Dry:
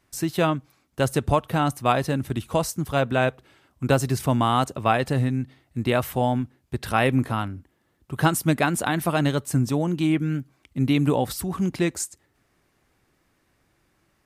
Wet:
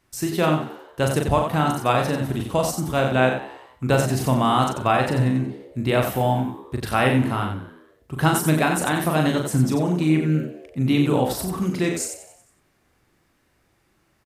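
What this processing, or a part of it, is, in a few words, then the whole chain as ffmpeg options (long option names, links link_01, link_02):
slapback doubling: -filter_complex "[0:a]asettb=1/sr,asplit=3[link_01][link_02][link_03];[link_01]atrim=end=9.924[link_04];[link_02]atrim=start=9.92:end=10.8,asetpts=PTS-STARTPTS,afade=type=in:duration=0.004:curve=qsin,afade=type=out:start_time=0.876:duration=0.004:curve=qsin,bandreject=frequency=3200:width=6.8[link_05];[link_03]atrim=start=10.796[link_06];[link_04][link_05]acrossfade=duration=0.004:curve1=hsin:curve2=qsin[link_07];[link_07][link_06]acrossfade=duration=0.004:curve1=qsin:curve2=hsin,asplit=3[link_08][link_09][link_10];[link_09]adelay=39,volume=-4.5dB[link_11];[link_10]adelay=90,volume=-6.5dB[link_12];[link_08][link_11][link_12]amix=inputs=3:normalize=0,asplit=6[link_13][link_14][link_15][link_16][link_17][link_18];[link_14]adelay=92,afreqshift=74,volume=-15dB[link_19];[link_15]adelay=184,afreqshift=148,volume=-20.4dB[link_20];[link_16]adelay=276,afreqshift=222,volume=-25.7dB[link_21];[link_17]adelay=368,afreqshift=296,volume=-31.1dB[link_22];[link_18]adelay=460,afreqshift=370,volume=-36.4dB[link_23];[link_13][link_19][link_20][link_21][link_22][link_23]amix=inputs=6:normalize=0"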